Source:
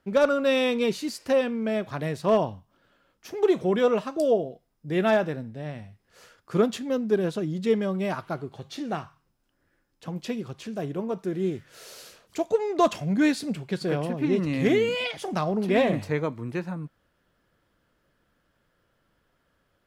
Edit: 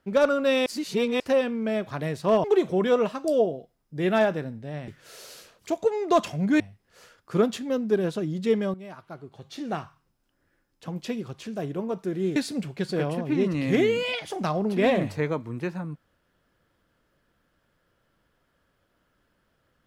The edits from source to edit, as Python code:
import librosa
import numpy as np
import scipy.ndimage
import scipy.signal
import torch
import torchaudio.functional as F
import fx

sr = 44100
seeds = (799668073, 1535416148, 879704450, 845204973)

y = fx.edit(x, sr, fx.reverse_span(start_s=0.66, length_s=0.54),
    fx.cut(start_s=2.44, length_s=0.92),
    fx.fade_in_from(start_s=7.94, length_s=0.96, curve='qua', floor_db=-14.0),
    fx.move(start_s=11.56, length_s=1.72, to_s=5.8), tone=tone)